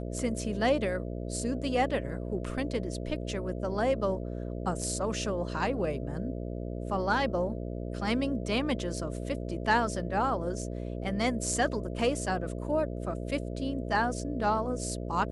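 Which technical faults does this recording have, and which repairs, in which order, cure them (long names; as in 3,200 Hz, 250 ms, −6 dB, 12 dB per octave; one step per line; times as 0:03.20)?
mains buzz 60 Hz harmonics 11 −36 dBFS
0:04.82: drop-out 3.2 ms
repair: hum removal 60 Hz, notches 11
repair the gap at 0:04.82, 3.2 ms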